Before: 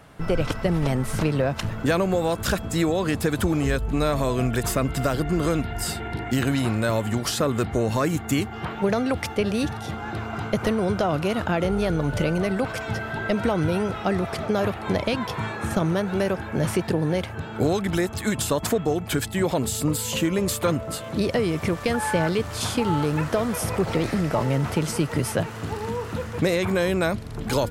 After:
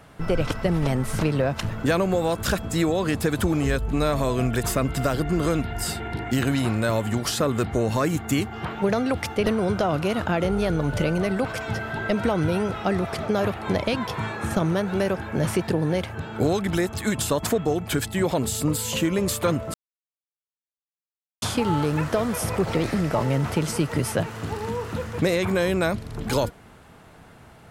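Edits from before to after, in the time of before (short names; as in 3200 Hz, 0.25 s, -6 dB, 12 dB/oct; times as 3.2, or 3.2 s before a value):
9.46–10.66 cut
20.94–22.62 mute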